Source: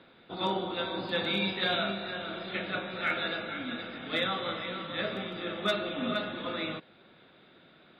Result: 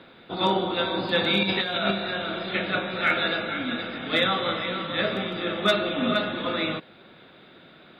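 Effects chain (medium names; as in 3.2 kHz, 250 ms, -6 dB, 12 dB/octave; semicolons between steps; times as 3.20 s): 1.43–1.91 s: compressor with a negative ratio -32 dBFS, ratio -0.5; trim +7.5 dB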